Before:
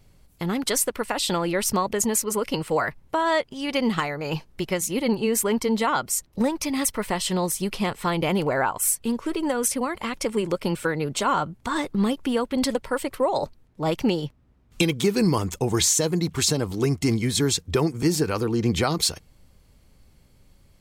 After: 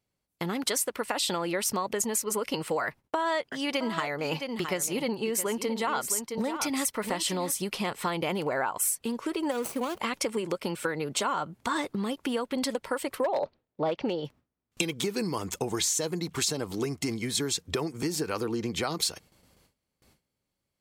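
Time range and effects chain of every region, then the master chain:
0:02.85–0:07.57: downward expander −43 dBFS + single-tap delay 665 ms −10.5 dB
0:09.51–0:10.00: running median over 25 samples + high-shelf EQ 7,100 Hz +11.5 dB
0:13.24–0:14.25: low-pass filter 4,400 Hz 24 dB per octave + parametric band 560 Hz +7.5 dB 0.88 octaves + hard clipping −12.5 dBFS
whole clip: downward compressor, threshold −26 dBFS; noise gate with hold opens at −44 dBFS; high-pass filter 270 Hz 6 dB per octave; level +1.5 dB

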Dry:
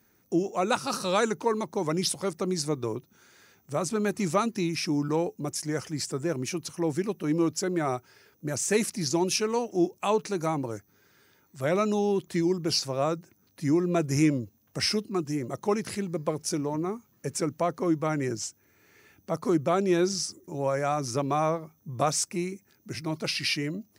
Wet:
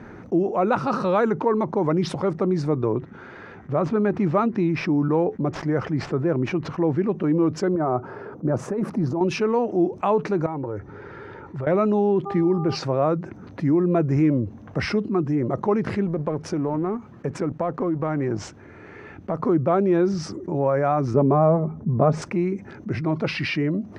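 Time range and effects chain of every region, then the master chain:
0:02.86–0:07.11: running median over 5 samples + noise gate −53 dBFS, range −7 dB
0:07.75–0:09.21: high-pass filter 120 Hz + flat-topped bell 3,900 Hz −13.5 dB 2.6 octaves + compressor whose output falls as the input rises −31 dBFS
0:10.46–0:11.67: low-pass filter 3,200 Hz 6 dB per octave + comb filter 2.2 ms, depth 40% + downward compressor, threshold −41 dBFS
0:12.25–0:12.74: hum with harmonics 400 Hz, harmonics 3, −44 dBFS 0 dB per octave + high-frequency loss of the air 63 metres
0:16.06–0:19.40: mu-law and A-law mismatch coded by A + downward compressor 3 to 1, threshold −31 dBFS
0:21.14–0:22.22: tilt shelving filter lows +9 dB, about 1,100 Hz + comb filter 4.8 ms, depth 42%
whole clip: low-pass filter 1,400 Hz 12 dB per octave; envelope flattener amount 50%; level +2 dB

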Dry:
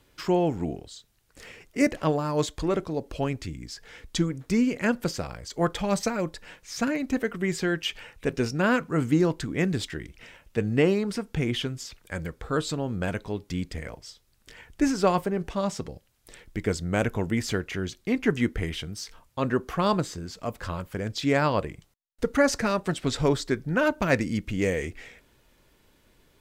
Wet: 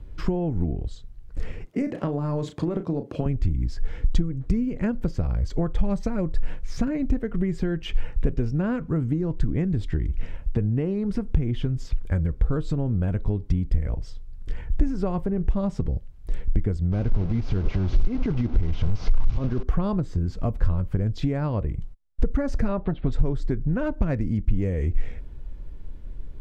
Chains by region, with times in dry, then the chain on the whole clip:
0:01.64–0:03.26: high-pass filter 150 Hz 24 dB per octave + downward compressor 4 to 1, threshold −25 dBFS + double-tracking delay 35 ms −9 dB
0:16.92–0:19.63: linear delta modulator 32 kbit/s, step −26 dBFS + notch filter 1,800 Hz, Q 8.2 + transient designer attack −11 dB, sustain −4 dB
0:22.68–0:23.12: Butterworth low-pass 4,100 Hz 48 dB per octave + dynamic equaliser 790 Hz, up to +6 dB, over −38 dBFS, Q 1
whole clip: spectral tilt −4 dB per octave; downward compressor 12 to 1, threshold −25 dBFS; low-shelf EQ 77 Hz +11 dB; level +2 dB

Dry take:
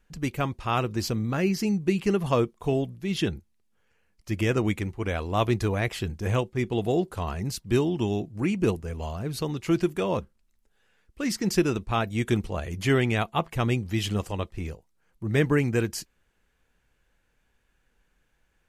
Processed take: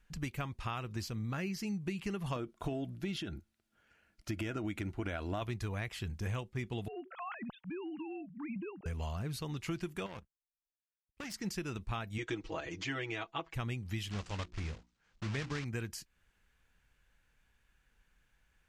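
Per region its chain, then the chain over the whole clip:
0:02.36–0:05.42: parametric band 3,500 Hz +3 dB 1.4 octaves + hollow resonant body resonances 310/630/1,400 Hz, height 12 dB, ringing for 25 ms + downward compressor 3 to 1, threshold −21 dBFS
0:06.88–0:08.86: three sine waves on the formant tracks + downward compressor 5 to 1, threshold −33 dBFS
0:10.06–0:11.34: downward compressor 12 to 1, threshold −28 dBFS + power curve on the samples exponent 2
0:12.18–0:13.54: Butterworth low-pass 6,900 Hz + low shelf with overshoot 240 Hz −6.5 dB, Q 3 + comb filter 6.2 ms, depth 95%
0:14.11–0:15.66: one scale factor per block 3 bits + low-pass filter 6,800 Hz 24 dB per octave + mains-hum notches 60/120/180/240/300/360 Hz
whole clip: guitar amp tone stack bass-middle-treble 5-5-5; downward compressor 5 to 1, threshold −47 dBFS; high-shelf EQ 2,500 Hz −10.5 dB; level +13 dB

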